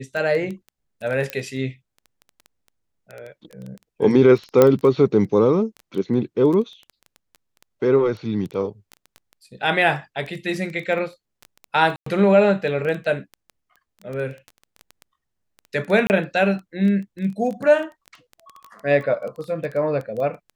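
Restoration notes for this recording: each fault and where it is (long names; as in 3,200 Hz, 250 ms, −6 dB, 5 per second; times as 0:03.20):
surface crackle 10 per second −27 dBFS
0:01.30: click −11 dBFS
0:04.62: click −2 dBFS
0:11.96–0:12.06: drop-out 104 ms
0:16.07–0:16.10: drop-out 29 ms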